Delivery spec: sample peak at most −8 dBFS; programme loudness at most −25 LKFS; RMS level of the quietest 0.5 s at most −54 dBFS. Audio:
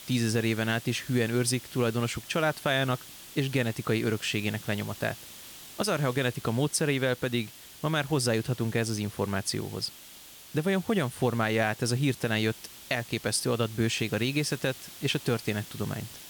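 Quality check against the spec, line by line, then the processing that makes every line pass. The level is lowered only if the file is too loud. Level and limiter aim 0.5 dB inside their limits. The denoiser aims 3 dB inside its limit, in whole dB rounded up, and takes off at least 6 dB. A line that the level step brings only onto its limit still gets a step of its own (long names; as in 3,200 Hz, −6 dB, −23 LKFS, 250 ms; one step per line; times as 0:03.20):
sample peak −14.5 dBFS: in spec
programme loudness −29.0 LKFS: in spec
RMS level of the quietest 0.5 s −49 dBFS: out of spec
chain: broadband denoise 8 dB, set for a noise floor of −49 dBFS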